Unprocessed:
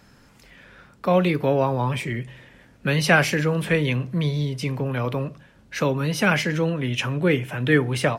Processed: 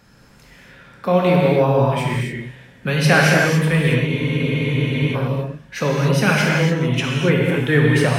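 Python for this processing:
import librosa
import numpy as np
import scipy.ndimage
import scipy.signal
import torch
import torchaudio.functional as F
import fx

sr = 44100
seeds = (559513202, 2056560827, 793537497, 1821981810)

y = fx.rev_gated(x, sr, seeds[0], gate_ms=310, shape='flat', drr_db=-2.5)
y = fx.spec_freeze(y, sr, seeds[1], at_s=4.08, hold_s=1.06)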